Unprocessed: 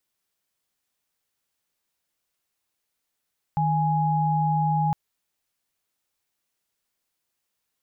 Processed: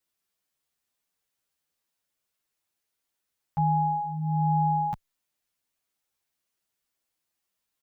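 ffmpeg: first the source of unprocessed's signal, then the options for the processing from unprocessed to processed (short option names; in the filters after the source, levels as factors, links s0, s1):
-f lavfi -i "aevalsrc='0.075*(sin(2*PI*155.56*t)+sin(2*PI*830.61*t))':d=1.36:s=44100"
-filter_complex "[0:a]asplit=2[s0][s1];[s1]adelay=9.3,afreqshift=1.1[s2];[s0][s2]amix=inputs=2:normalize=1"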